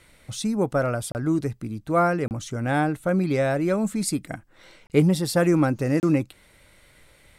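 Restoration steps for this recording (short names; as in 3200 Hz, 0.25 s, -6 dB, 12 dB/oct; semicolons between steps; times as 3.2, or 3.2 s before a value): interpolate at 1.12/2.28/4.87/6, 29 ms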